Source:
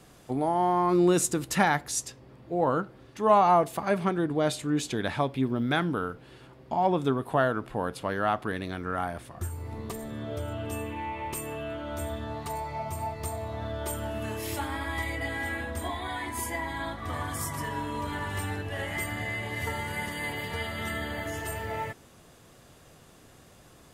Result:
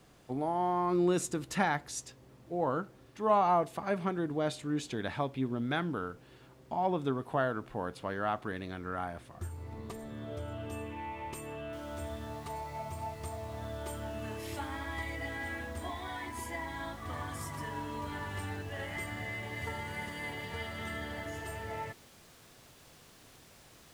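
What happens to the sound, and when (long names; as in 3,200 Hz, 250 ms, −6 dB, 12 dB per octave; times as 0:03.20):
0:11.73: noise floor change −63 dB −50 dB
whole clip: high-shelf EQ 9,800 Hz −11.5 dB; level −6 dB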